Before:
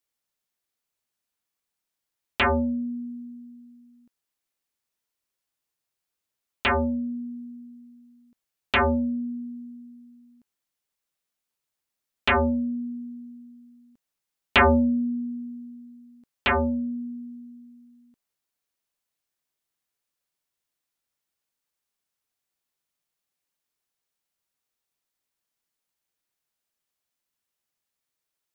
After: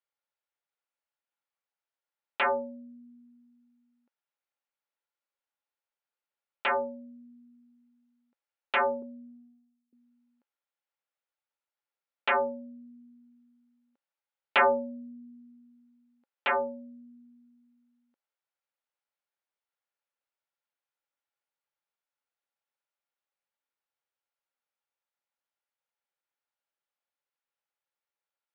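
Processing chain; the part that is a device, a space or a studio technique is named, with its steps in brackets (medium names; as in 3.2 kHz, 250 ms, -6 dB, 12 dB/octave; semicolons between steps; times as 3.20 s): 9.02–9.93 s: expander -31 dBFS; tin-can telephone (band-pass 510–2800 Hz; small resonant body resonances 540/840/1400 Hz, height 7 dB); trim -4.5 dB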